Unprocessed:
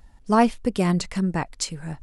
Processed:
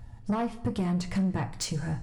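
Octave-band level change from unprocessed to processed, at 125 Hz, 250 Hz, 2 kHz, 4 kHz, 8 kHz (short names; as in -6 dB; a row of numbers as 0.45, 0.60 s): -2.5, -6.0, -9.0, -5.5, -6.0 dB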